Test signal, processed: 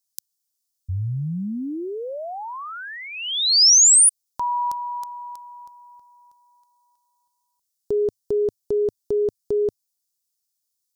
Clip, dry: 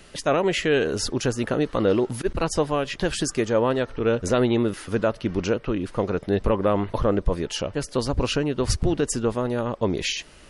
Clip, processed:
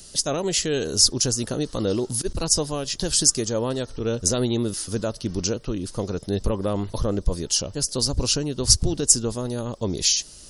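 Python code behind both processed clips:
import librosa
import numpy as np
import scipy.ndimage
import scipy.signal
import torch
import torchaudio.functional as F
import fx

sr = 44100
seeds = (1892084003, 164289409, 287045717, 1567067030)

y = fx.curve_eq(x, sr, hz=(100.0, 2300.0, 5100.0), db=(0, -11, 12))
y = y * 10.0 ** (1.0 / 20.0)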